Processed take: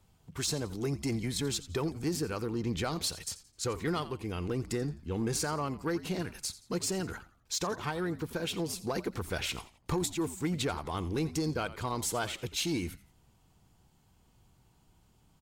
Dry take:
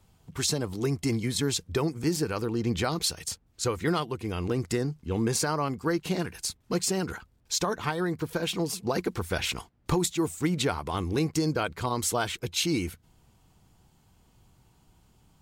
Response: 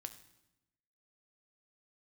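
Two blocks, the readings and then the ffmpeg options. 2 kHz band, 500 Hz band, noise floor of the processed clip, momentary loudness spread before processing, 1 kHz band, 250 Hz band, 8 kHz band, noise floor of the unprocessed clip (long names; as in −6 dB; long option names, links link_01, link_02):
−5.0 dB, −5.0 dB, −66 dBFS, 5 LU, −5.0 dB, −5.0 dB, −5.0 dB, −65 dBFS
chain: -filter_complex "[0:a]asplit=4[link_01][link_02][link_03][link_04];[link_02]adelay=86,afreqshift=-75,volume=-17dB[link_05];[link_03]adelay=172,afreqshift=-150,volume=-26.1dB[link_06];[link_04]adelay=258,afreqshift=-225,volume=-35.2dB[link_07];[link_01][link_05][link_06][link_07]amix=inputs=4:normalize=0,aeval=exprs='0.2*(cos(1*acos(clip(val(0)/0.2,-1,1)))-cos(1*PI/2))+0.0141*(cos(5*acos(clip(val(0)/0.2,-1,1)))-cos(5*PI/2))':channel_layout=same,volume=-6.5dB"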